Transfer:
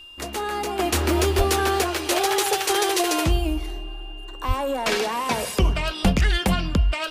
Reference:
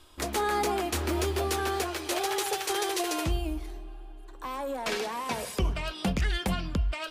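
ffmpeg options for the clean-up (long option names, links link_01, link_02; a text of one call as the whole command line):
ffmpeg -i in.wav -filter_complex "[0:a]bandreject=frequency=2800:width=30,asplit=3[link_01][link_02][link_03];[link_01]afade=type=out:start_time=1.37:duration=0.02[link_04];[link_02]highpass=frequency=140:width=0.5412,highpass=frequency=140:width=1.3066,afade=type=in:start_time=1.37:duration=0.02,afade=type=out:start_time=1.49:duration=0.02[link_05];[link_03]afade=type=in:start_time=1.49:duration=0.02[link_06];[link_04][link_05][link_06]amix=inputs=3:normalize=0,asplit=3[link_07][link_08][link_09];[link_07]afade=type=out:start_time=4.47:duration=0.02[link_10];[link_08]highpass=frequency=140:width=0.5412,highpass=frequency=140:width=1.3066,afade=type=in:start_time=4.47:duration=0.02,afade=type=out:start_time=4.59:duration=0.02[link_11];[link_09]afade=type=in:start_time=4.59:duration=0.02[link_12];[link_10][link_11][link_12]amix=inputs=3:normalize=0,asplit=3[link_13][link_14][link_15];[link_13]afade=type=out:start_time=6.03:duration=0.02[link_16];[link_14]highpass=frequency=140:width=0.5412,highpass=frequency=140:width=1.3066,afade=type=in:start_time=6.03:duration=0.02,afade=type=out:start_time=6.15:duration=0.02[link_17];[link_15]afade=type=in:start_time=6.15:duration=0.02[link_18];[link_16][link_17][link_18]amix=inputs=3:normalize=0,asetnsamples=nb_out_samples=441:pad=0,asendcmd='0.79 volume volume -8dB',volume=0dB" out.wav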